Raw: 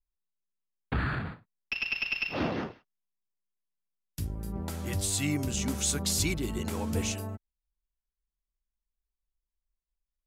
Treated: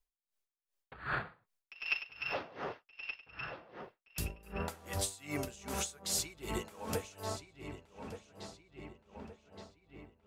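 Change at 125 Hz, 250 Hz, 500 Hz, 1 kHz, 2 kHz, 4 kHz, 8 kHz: −11.5, −11.5, −3.5, −2.0, −5.0, −7.0, −7.5 decibels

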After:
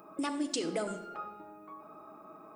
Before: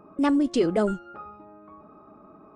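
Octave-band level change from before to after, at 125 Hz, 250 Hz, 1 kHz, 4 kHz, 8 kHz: −13.5, −12.5, −7.0, −1.0, +4.5 decibels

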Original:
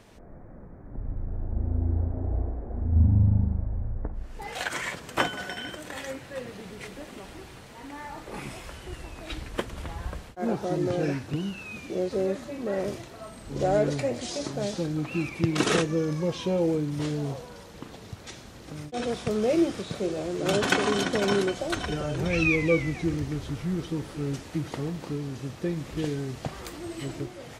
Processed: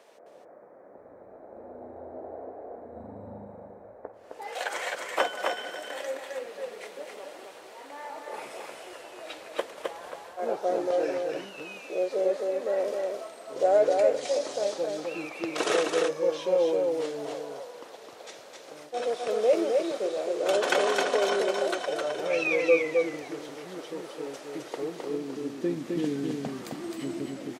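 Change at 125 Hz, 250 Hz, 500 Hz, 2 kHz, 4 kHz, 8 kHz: below −20 dB, −6.0 dB, +3.5 dB, −1.5 dB, −1.5 dB, −2.0 dB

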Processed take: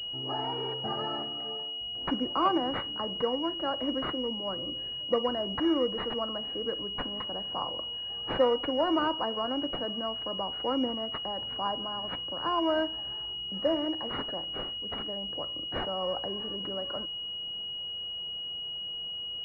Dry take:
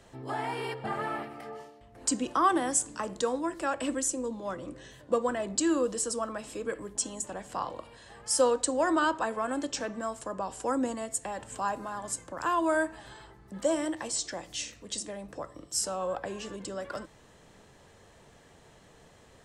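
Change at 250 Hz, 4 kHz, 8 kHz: 0.0 dB, +14.0 dB, below −35 dB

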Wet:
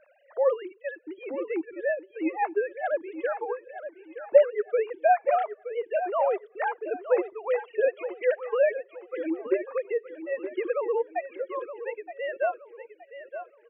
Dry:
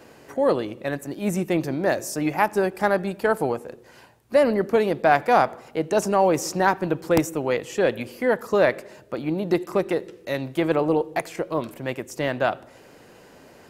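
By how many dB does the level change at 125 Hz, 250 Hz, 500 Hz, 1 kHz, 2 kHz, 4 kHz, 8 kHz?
below −40 dB, −11.5 dB, −3.0 dB, −5.5 dB, −7.5 dB, below −15 dB, below −40 dB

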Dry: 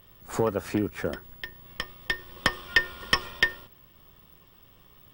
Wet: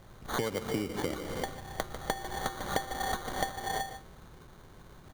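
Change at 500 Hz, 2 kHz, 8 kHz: −3.5, −12.0, +2.0 decibels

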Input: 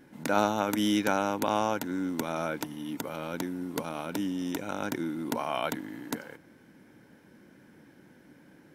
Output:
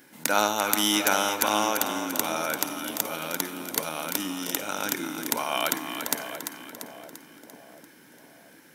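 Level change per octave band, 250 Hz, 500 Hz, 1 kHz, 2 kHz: −2.0, +1.0, +4.0, +7.0 decibels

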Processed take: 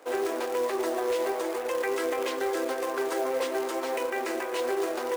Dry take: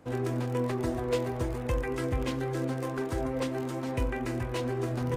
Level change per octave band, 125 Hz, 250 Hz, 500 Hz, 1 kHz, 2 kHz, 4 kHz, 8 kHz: below −30 dB, −3.5 dB, +5.0 dB, +6.0 dB, +6.0 dB, +5.5 dB, +7.0 dB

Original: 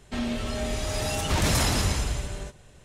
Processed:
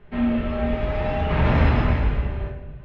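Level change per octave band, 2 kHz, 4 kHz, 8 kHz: +2.5 dB, −9.0 dB, below −30 dB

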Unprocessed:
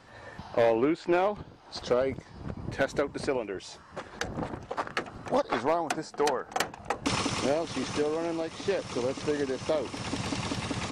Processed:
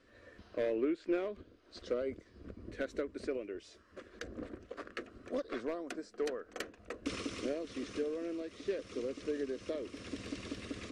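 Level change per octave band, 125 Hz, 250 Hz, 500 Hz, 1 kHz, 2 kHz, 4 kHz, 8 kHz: −15.5, −7.0, −9.0, −19.0, −11.5, −12.5, −14.5 decibels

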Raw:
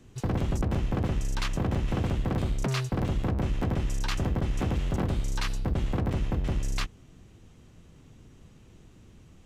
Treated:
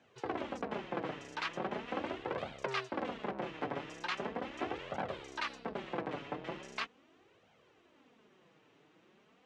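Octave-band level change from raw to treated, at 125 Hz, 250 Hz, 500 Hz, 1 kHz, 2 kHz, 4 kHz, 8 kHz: −24.0, −11.5, −3.5, −1.0, −1.5, −5.5, −15.5 decibels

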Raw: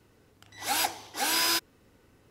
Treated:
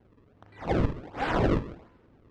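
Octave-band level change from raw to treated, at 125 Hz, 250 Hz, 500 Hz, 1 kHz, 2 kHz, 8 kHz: +24.5 dB, +12.5 dB, +11.5 dB, −0.5 dB, −4.5 dB, below −25 dB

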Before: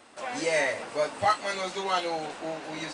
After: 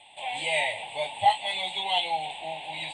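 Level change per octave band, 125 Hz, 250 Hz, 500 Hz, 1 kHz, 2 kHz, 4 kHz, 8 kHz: −3.5, −13.5, −5.0, +3.0, +0.5, +7.5, −4.0 decibels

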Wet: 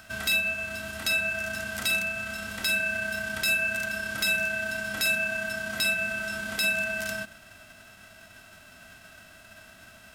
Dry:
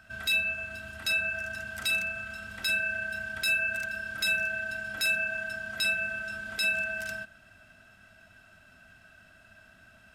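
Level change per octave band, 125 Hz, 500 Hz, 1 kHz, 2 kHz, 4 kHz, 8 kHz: +5.0, +6.5, +6.0, +2.0, +2.5, +6.5 decibels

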